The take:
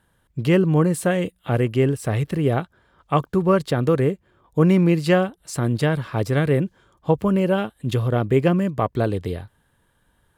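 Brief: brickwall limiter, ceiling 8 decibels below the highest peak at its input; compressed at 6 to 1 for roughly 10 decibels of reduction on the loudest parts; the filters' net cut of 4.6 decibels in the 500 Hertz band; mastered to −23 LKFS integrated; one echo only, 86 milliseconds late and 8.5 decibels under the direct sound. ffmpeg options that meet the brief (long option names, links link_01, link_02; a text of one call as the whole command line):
ffmpeg -i in.wav -af "equalizer=frequency=500:width_type=o:gain=-6,acompressor=threshold=-25dB:ratio=6,alimiter=limit=-24dB:level=0:latency=1,aecho=1:1:86:0.376,volume=10dB" out.wav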